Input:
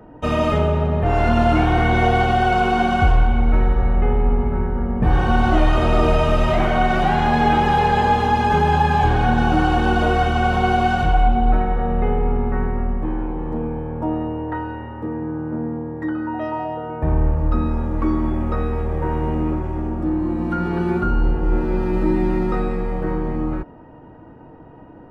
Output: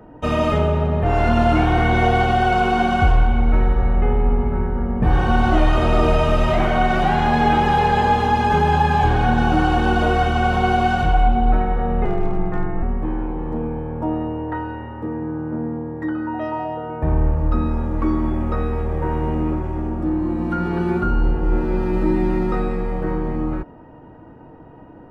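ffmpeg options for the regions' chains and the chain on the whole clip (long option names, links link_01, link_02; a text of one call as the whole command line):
ffmpeg -i in.wav -filter_complex "[0:a]asettb=1/sr,asplit=3[link_01][link_02][link_03];[link_01]atrim=end=12.054[link_04];[link_02]atrim=start=12.05:end=12.83,asetpts=PTS-STARTPTS,afade=type=in:duration=0.004:curve=qsin,afade=type=out:start_time=0.776:duration=0.004:curve=qsin,asoftclip=type=hard:threshold=-12.5dB,afreqshift=-55[link_05];[link_03]atrim=start=12.826[link_06];[link_04][link_05]acrossfade=duration=0.004:curve1=hsin:curve2=qsin[link_07];[link_07][link_06]acrossfade=duration=0.004:curve1=qsin:curve2=hsin" out.wav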